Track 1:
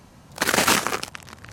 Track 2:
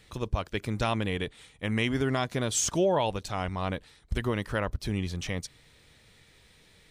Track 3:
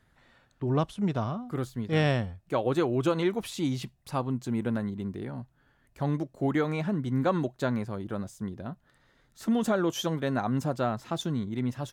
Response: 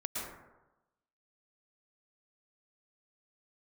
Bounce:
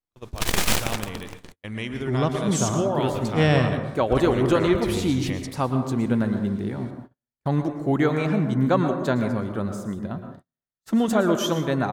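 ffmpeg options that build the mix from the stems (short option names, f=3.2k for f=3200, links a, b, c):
-filter_complex "[0:a]aeval=exprs='abs(val(0))':c=same,volume=-2dB,asplit=2[a][b];[b]volume=-17.5dB[c];[1:a]volume=-9dB,asplit=2[d][e];[e]volume=-6dB[f];[2:a]adelay=1450,volume=-3.5dB,asplit=2[g][h];[h]volume=-5.5dB[i];[3:a]atrim=start_sample=2205[j];[c][f][i]amix=inputs=3:normalize=0[k];[k][j]afir=irnorm=-1:irlink=0[l];[a][d][g][l]amix=inputs=4:normalize=0,dynaudnorm=f=220:g=13:m=6dB,agate=range=-43dB:threshold=-39dB:ratio=16:detection=peak"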